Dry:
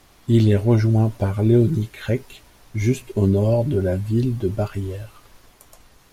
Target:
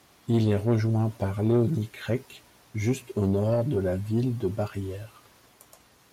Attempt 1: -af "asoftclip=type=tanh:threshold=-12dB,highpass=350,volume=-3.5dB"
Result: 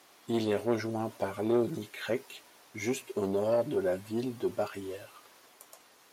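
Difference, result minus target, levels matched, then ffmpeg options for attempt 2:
125 Hz band −11.5 dB
-af "asoftclip=type=tanh:threshold=-12dB,highpass=100,volume=-3.5dB"

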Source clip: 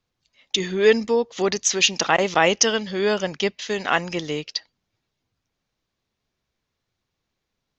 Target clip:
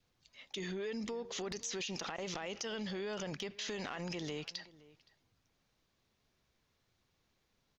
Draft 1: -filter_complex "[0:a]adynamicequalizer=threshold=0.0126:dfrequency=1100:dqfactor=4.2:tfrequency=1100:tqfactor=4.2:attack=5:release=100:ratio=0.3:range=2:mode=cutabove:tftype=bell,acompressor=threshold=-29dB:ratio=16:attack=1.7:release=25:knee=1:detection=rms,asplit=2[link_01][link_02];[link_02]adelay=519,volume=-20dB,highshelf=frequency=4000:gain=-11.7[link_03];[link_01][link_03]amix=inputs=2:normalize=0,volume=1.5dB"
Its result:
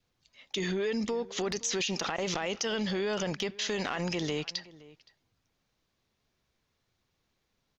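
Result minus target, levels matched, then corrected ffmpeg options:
downward compressor: peak gain reduction −9 dB
-filter_complex "[0:a]adynamicequalizer=threshold=0.0126:dfrequency=1100:dqfactor=4.2:tfrequency=1100:tqfactor=4.2:attack=5:release=100:ratio=0.3:range=2:mode=cutabove:tftype=bell,acompressor=threshold=-38.5dB:ratio=16:attack=1.7:release=25:knee=1:detection=rms,asplit=2[link_01][link_02];[link_02]adelay=519,volume=-20dB,highshelf=frequency=4000:gain=-11.7[link_03];[link_01][link_03]amix=inputs=2:normalize=0,volume=1.5dB"

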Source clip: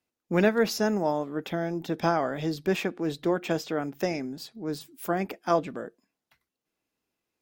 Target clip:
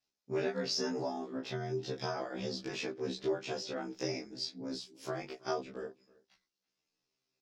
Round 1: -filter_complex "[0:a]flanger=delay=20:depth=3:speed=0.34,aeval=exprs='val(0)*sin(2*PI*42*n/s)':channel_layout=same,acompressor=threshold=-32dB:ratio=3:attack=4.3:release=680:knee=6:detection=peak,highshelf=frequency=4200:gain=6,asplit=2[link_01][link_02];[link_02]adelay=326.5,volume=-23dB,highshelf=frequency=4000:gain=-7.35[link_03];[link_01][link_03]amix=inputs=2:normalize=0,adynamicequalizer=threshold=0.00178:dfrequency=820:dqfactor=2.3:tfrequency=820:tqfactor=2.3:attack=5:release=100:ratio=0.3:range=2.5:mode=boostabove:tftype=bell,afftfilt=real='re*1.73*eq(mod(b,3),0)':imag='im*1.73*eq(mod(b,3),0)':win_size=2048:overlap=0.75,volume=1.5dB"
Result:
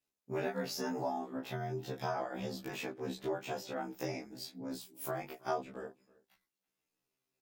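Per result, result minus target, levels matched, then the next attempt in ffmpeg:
4,000 Hz band −5.5 dB; 1,000 Hz band +4.5 dB
-filter_complex "[0:a]flanger=delay=20:depth=3:speed=0.34,aeval=exprs='val(0)*sin(2*PI*42*n/s)':channel_layout=same,acompressor=threshold=-32dB:ratio=3:attack=4.3:release=680:knee=6:detection=peak,lowpass=frequency=5300:width_type=q:width=2.7,highshelf=frequency=4200:gain=6,asplit=2[link_01][link_02];[link_02]adelay=326.5,volume=-23dB,highshelf=frequency=4000:gain=-7.35[link_03];[link_01][link_03]amix=inputs=2:normalize=0,adynamicequalizer=threshold=0.00178:dfrequency=820:dqfactor=2.3:tfrequency=820:tqfactor=2.3:attack=5:release=100:ratio=0.3:range=2.5:mode=boostabove:tftype=bell,afftfilt=real='re*1.73*eq(mod(b,3),0)':imag='im*1.73*eq(mod(b,3),0)':win_size=2048:overlap=0.75,volume=1.5dB"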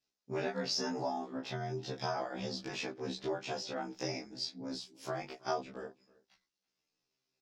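1,000 Hz band +4.0 dB
-filter_complex "[0:a]flanger=delay=20:depth=3:speed=0.34,aeval=exprs='val(0)*sin(2*PI*42*n/s)':channel_layout=same,acompressor=threshold=-32dB:ratio=3:attack=4.3:release=680:knee=6:detection=peak,lowpass=frequency=5300:width_type=q:width=2.7,highshelf=frequency=4200:gain=6,asplit=2[link_01][link_02];[link_02]adelay=326.5,volume=-23dB,highshelf=frequency=4000:gain=-7.35[link_03];[link_01][link_03]amix=inputs=2:normalize=0,adynamicequalizer=threshold=0.00178:dfrequency=400:dqfactor=2.3:tfrequency=400:tqfactor=2.3:attack=5:release=100:ratio=0.3:range=2.5:mode=boostabove:tftype=bell,afftfilt=real='re*1.73*eq(mod(b,3),0)':imag='im*1.73*eq(mod(b,3),0)':win_size=2048:overlap=0.75,volume=1.5dB"

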